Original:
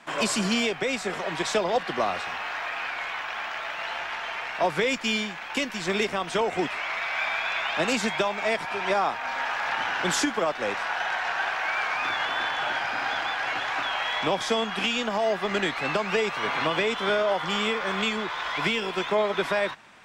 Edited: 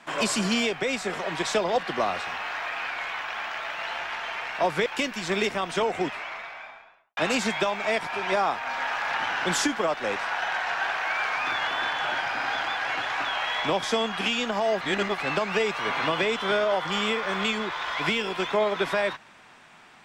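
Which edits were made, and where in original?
0:04.86–0:05.44: remove
0:06.36–0:07.75: fade out and dull
0:15.39–0:15.76: reverse

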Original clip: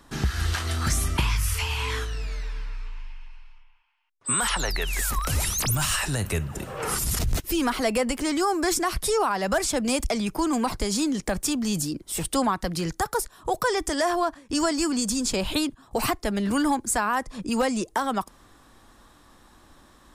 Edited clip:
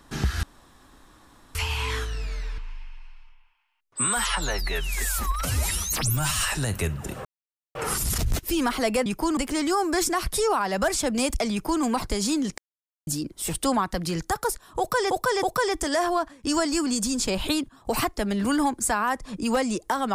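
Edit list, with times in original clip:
0:00.43–0:01.55: fill with room tone
0:02.58–0:02.87: remove
0:04.36–0:05.92: time-stretch 1.5×
0:06.76: splice in silence 0.50 s
0:10.22–0:10.53: duplicate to 0:08.07
0:11.28–0:11.77: silence
0:13.49–0:13.81: repeat, 3 plays

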